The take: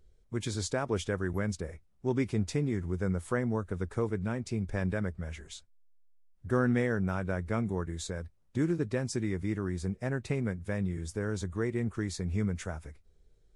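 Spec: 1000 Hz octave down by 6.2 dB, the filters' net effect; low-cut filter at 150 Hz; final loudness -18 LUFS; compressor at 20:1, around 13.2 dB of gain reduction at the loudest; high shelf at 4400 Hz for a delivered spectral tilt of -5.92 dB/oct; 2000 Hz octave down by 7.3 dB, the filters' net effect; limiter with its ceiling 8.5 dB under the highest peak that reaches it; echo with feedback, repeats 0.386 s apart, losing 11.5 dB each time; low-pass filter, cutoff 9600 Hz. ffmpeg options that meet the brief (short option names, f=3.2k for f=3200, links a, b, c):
-af "highpass=150,lowpass=9.6k,equalizer=f=1k:t=o:g=-6,equalizer=f=2k:t=o:g=-6,highshelf=f=4.4k:g=-7,acompressor=threshold=-38dB:ratio=20,alimiter=level_in=11.5dB:limit=-24dB:level=0:latency=1,volume=-11.5dB,aecho=1:1:386|772|1158:0.266|0.0718|0.0194,volume=28dB"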